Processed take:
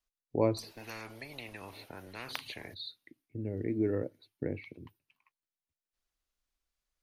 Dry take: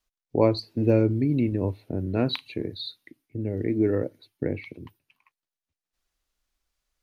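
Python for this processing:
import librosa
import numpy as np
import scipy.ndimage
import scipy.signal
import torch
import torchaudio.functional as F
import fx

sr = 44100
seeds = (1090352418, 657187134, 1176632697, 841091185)

y = fx.spectral_comp(x, sr, ratio=10.0, at=(0.56, 2.73), fade=0.02)
y = y * librosa.db_to_amplitude(-7.5)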